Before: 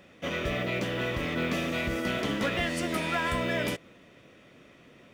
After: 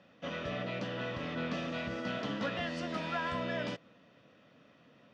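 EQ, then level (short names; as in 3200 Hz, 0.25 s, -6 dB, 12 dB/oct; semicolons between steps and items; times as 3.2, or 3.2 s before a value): speaker cabinet 120–5200 Hz, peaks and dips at 370 Hz -10 dB, 2200 Hz -9 dB, 3500 Hz -3 dB; -4.5 dB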